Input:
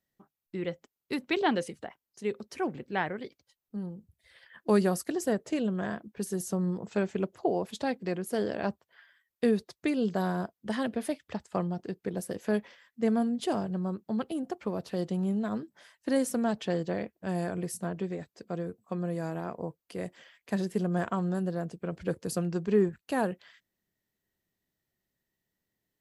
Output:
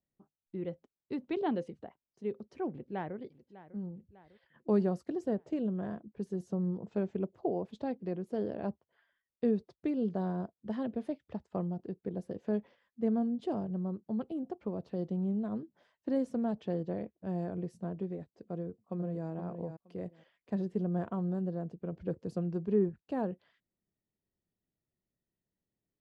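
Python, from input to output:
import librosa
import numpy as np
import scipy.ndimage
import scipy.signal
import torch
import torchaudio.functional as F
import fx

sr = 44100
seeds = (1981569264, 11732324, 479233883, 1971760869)

y = fx.echo_throw(x, sr, start_s=2.7, length_s=0.47, ms=600, feedback_pct=50, wet_db=-16.0)
y = fx.echo_throw(y, sr, start_s=18.52, length_s=0.77, ms=470, feedback_pct=15, wet_db=-8.0)
y = scipy.signal.sosfilt(scipy.signal.butter(2, 2400.0, 'lowpass', fs=sr, output='sos'), y)
y = fx.peak_eq(y, sr, hz=1800.0, db=-12.0, octaves=2.0)
y = y * librosa.db_to_amplitude(-2.5)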